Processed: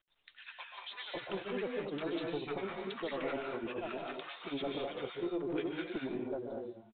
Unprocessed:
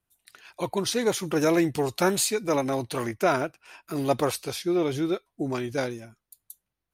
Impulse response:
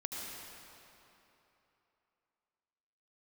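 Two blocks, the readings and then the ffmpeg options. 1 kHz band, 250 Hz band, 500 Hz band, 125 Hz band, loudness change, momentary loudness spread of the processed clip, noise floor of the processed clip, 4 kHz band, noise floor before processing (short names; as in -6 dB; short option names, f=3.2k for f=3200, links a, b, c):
-13.5 dB, -12.0 dB, -11.5 dB, -16.5 dB, -12.5 dB, 7 LU, -65 dBFS, -11.0 dB, -84 dBFS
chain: -filter_complex "[0:a]highpass=f=160:w=0.5412,highpass=f=160:w=1.3066,aemphasis=mode=production:type=50kf,agate=range=-11dB:threshold=-55dB:ratio=16:detection=peak,lowshelf=f=210:g=-4.5,acompressor=threshold=-34dB:ratio=4,aresample=11025,asoftclip=type=tanh:threshold=-28.5dB,aresample=44100,tremolo=f=10:d=0.94,asoftclip=type=hard:threshold=-34.5dB,acrossover=split=1000[a][b];[a]adelay=550[c];[c][b]amix=inputs=2:normalize=0[d];[1:a]atrim=start_sample=2205,atrim=end_sample=6174,asetrate=24696,aresample=44100[e];[d][e]afir=irnorm=-1:irlink=0,volume=3.5dB" -ar 8000 -c:a pcm_mulaw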